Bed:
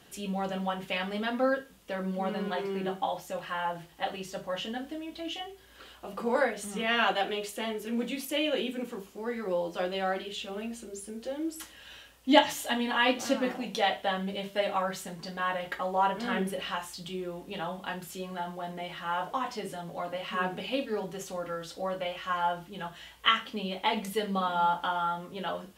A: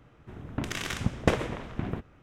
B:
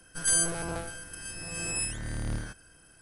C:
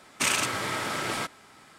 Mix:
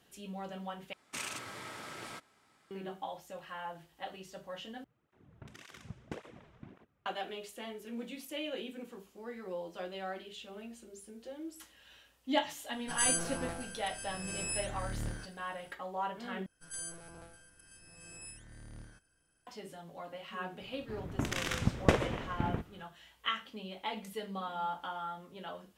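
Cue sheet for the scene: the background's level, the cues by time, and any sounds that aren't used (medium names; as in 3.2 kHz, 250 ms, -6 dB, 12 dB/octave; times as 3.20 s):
bed -10 dB
0.93 s: replace with C -15 dB
4.84 s: replace with A -16.5 dB + cancelling through-zero flanger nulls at 1.8 Hz, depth 4.3 ms
12.73 s: add B -5.5 dB
16.46 s: replace with B -17.5 dB
20.61 s: add A -2 dB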